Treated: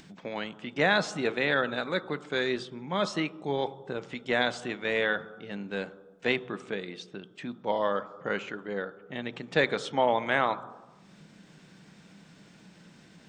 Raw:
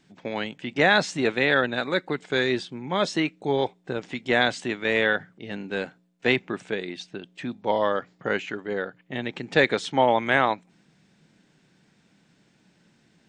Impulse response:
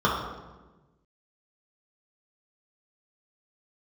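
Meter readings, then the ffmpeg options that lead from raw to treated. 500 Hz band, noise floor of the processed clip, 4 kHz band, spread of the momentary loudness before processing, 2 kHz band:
-4.5 dB, -56 dBFS, -5.0 dB, 12 LU, -5.5 dB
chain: -filter_complex "[0:a]acompressor=mode=upward:threshold=-37dB:ratio=2.5,asplit=2[a][b];[1:a]atrim=start_sample=2205[c];[b][c]afir=irnorm=-1:irlink=0,volume=-28dB[d];[a][d]amix=inputs=2:normalize=0,volume=-5.5dB"

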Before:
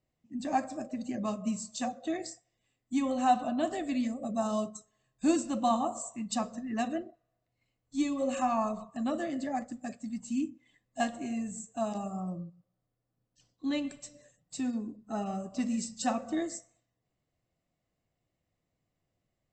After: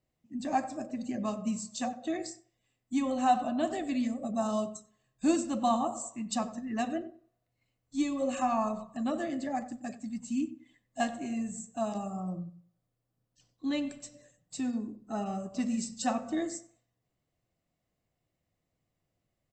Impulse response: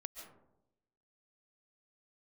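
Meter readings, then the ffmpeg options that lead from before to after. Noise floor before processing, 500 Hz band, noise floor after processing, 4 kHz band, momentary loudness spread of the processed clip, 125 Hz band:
-83 dBFS, 0.0 dB, -83 dBFS, 0.0 dB, 11 LU, +0.5 dB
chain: -filter_complex "[0:a]asplit=2[a][b];[b]adelay=92,lowpass=f=1.8k:p=1,volume=-14.5dB,asplit=2[c][d];[d]adelay=92,lowpass=f=1.8k:p=1,volume=0.25,asplit=2[e][f];[f]adelay=92,lowpass=f=1.8k:p=1,volume=0.25[g];[a][c][e][g]amix=inputs=4:normalize=0"

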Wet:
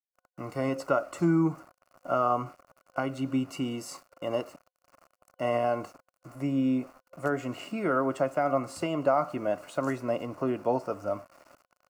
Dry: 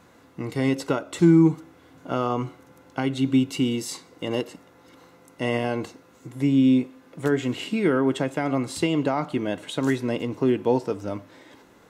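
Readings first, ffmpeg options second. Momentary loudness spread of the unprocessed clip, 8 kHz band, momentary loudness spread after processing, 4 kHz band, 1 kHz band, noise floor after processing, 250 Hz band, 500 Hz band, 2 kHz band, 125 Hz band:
16 LU, -8.5 dB, 12 LU, -10.5 dB, +1.0 dB, under -85 dBFS, -8.5 dB, -3.0 dB, -5.5 dB, -8.5 dB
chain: -af "aeval=exprs='val(0)*gte(abs(val(0)),0.00596)':c=same,superequalizer=8b=3.98:9b=1.78:10b=3.55:13b=0.316,volume=-8.5dB"

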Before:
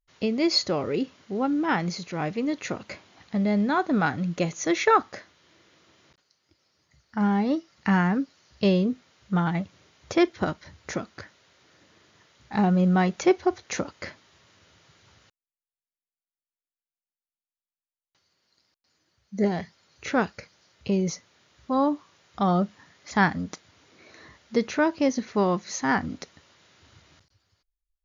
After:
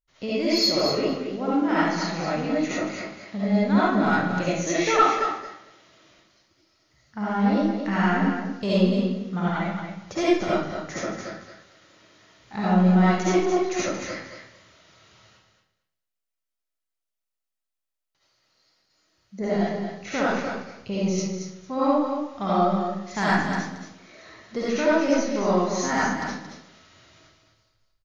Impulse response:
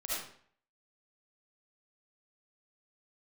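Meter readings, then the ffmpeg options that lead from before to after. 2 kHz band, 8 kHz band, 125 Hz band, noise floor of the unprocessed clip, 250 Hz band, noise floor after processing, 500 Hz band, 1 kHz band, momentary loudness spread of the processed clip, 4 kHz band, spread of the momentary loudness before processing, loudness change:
+2.5 dB, n/a, +1.5 dB, under -85 dBFS, +2.0 dB, -84 dBFS, +3.0 dB, +2.5 dB, 14 LU, +3.5 dB, 16 LU, +1.5 dB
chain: -filter_complex "[0:a]asoftclip=type=tanh:threshold=-13dB,aecho=1:1:226|452|678:0.422|0.0675|0.0108[a];[1:a]atrim=start_sample=2205[b];[a][b]afir=irnorm=-1:irlink=0"

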